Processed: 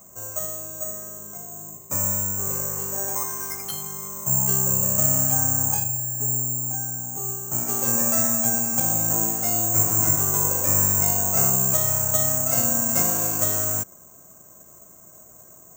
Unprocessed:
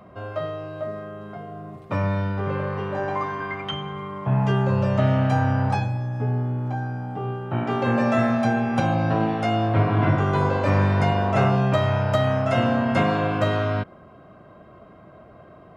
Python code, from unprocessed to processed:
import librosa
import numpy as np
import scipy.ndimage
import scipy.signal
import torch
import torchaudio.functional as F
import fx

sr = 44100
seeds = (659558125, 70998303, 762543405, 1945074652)

y = fx.high_shelf(x, sr, hz=5800.0, db=-6.5)
y = (np.kron(y[::6], np.eye(6)[0]) * 6)[:len(y)]
y = y * librosa.db_to_amplitude(-8.5)